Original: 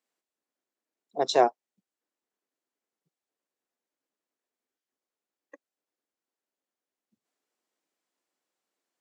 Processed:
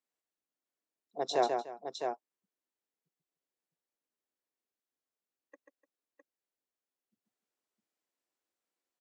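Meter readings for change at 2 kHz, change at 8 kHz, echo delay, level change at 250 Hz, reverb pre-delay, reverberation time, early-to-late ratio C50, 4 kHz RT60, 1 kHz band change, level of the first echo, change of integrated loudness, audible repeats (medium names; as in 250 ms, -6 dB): -6.0 dB, -6.0 dB, 139 ms, -6.0 dB, no reverb, no reverb, no reverb, no reverb, -6.0 dB, -5.5 dB, -9.0 dB, 3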